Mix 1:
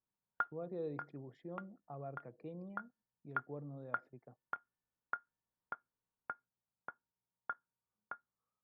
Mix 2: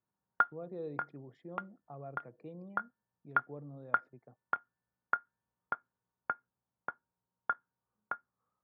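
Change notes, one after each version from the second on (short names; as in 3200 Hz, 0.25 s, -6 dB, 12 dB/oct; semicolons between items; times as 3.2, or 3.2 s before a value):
background +8.5 dB; master: add HPF 53 Hz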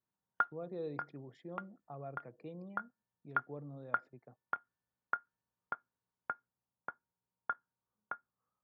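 speech: add high shelf 2600 Hz +9.5 dB; background -4.0 dB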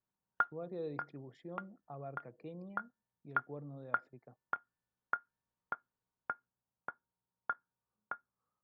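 master: remove HPF 53 Hz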